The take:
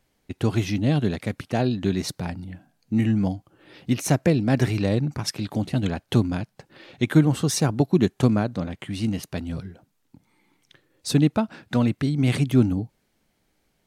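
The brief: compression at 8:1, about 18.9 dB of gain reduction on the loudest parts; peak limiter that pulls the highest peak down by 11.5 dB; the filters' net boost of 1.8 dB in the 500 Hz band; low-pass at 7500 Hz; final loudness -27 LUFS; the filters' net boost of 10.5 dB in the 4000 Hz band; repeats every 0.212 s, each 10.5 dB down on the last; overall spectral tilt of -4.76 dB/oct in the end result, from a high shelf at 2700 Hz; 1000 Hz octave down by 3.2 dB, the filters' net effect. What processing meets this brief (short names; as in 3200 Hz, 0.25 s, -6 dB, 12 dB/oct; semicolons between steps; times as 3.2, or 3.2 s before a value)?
LPF 7500 Hz; bell 500 Hz +4 dB; bell 1000 Hz -8.5 dB; high shelf 2700 Hz +7.5 dB; bell 4000 Hz +7.5 dB; compressor 8:1, threshold -32 dBFS; limiter -26.5 dBFS; feedback echo 0.212 s, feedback 30%, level -10.5 dB; gain +11.5 dB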